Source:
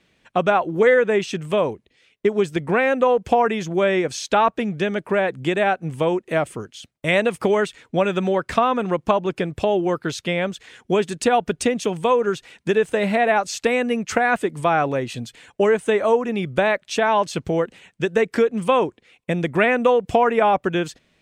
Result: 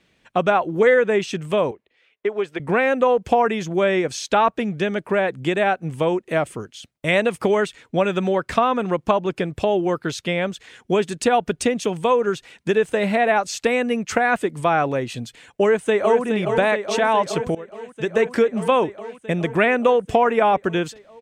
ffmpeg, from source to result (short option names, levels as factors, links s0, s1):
-filter_complex "[0:a]asettb=1/sr,asplit=3[s0][s1][s2];[s0]atrim=end=1.714[s3];[s1]atrim=start=1.71:end=2.6,asetpts=PTS-STARTPTS,afade=t=in:d=0.004:c=qsin,afade=t=out:st=0.886:d=0.004:c=qsin,acrossover=split=370 3300:gain=0.158 1 0.2[s4][s5][s6];[s4][s5][s6]amix=inputs=3:normalize=0[s7];[s2]atrim=start=2.596[s8];[s3][s7]acrossfade=d=0.004:c1=hsin:c2=qsin[s9];[s9][s8]acrossfade=d=0.004:c1=qsin:c2=hsin,asplit=2[s10][s11];[s11]afade=t=in:st=15.62:d=0.01,afade=t=out:st=16.24:d=0.01,aecho=0:1:420|840|1260|1680|2100|2520|2940|3360|3780|4200|4620|5040:0.446684|0.357347|0.285877|0.228702|0.182962|0.146369|0.117095|0.0936763|0.0749411|0.0599529|0.0479623|0.0383698[s12];[s10][s12]amix=inputs=2:normalize=0,asplit=2[s13][s14];[s13]atrim=end=17.55,asetpts=PTS-STARTPTS,afade=t=out:st=17.546:d=0.004:c=hsin:silence=0.1[s15];[s14]atrim=start=17.55,asetpts=PTS-STARTPTS,afade=t=in:d=0.67:silence=0.1[s16];[s15][s16]concat=n=2:v=0:a=1"